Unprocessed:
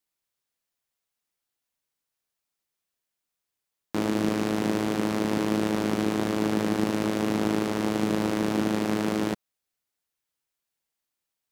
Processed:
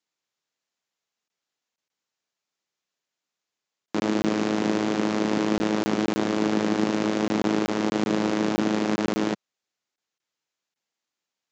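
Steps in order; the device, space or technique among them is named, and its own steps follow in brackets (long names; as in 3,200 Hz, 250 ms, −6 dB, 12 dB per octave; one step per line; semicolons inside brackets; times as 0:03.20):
call with lost packets (high-pass filter 150 Hz 12 dB per octave; downsampling to 16,000 Hz; dropped packets)
level +2.5 dB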